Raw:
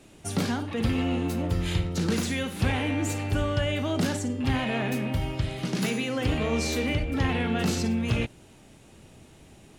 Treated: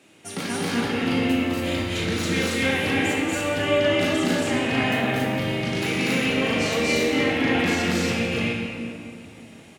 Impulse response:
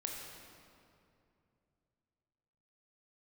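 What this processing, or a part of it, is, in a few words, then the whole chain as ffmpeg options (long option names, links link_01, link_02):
stadium PA: -filter_complex "[0:a]highpass=180,equalizer=frequency=2300:width_type=o:width=1.4:gain=6,aecho=1:1:239.1|277:0.891|0.891[link_01];[1:a]atrim=start_sample=2205[link_02];[link_01][link_02]afir=irnorm=-1:irlink=0"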